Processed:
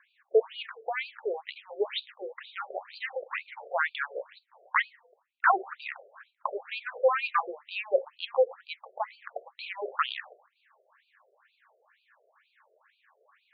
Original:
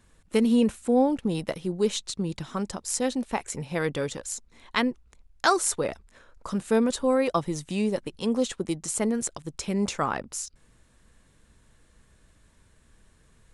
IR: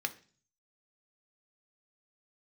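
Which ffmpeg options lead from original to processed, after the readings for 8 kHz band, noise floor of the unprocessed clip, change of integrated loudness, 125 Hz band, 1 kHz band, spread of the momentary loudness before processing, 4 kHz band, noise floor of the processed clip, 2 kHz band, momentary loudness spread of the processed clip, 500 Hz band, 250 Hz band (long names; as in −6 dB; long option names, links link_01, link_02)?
below −40 dB, −61 dBFS, −4.5 dB, below −40 dB, 0.0 dB, 11 LU, −4.0 dB, −73 dBFS, +3.0 dB, 15 LU, −3.0 dB, −27.0 dB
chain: -filter_complex "[0:a]equalizer=frequency=1000:width=0.48:gain=13.5,volume=11.5dB,asoftclip=hard,volume=-11.5dB,asplit=2[link_01][link_02];[1:a]atrim=start_sample=2205,lowshelf=frequency=210:gain=12[link_03];[link_02][link_03]afir=irnorm=-1:irlink=0,volume=-3dB[link_04];[link_01][link_04]amix=inputs=2:normalize=0,afftfilt=real='re*between(b*sr/1024,500*pow(3400/500,0.5+0.5*sin(2*PI*2.1*pts/sr))/1.41,500*pow(3400/500,0.5+0.5*sin(2*PI*2.1*pts/sr))*1.41)':imag='im*between(b*sr/1024,500*pow(3400/500,0.5+0.5*sin(2*PI*2.1*pts/sr))/1.41,500*pow(3400/500,0.5+0.5*sin(2*PI*2.1*pts/sr))*1.41)':win_size=1024:overlap=0.75,volume=-7.5dB"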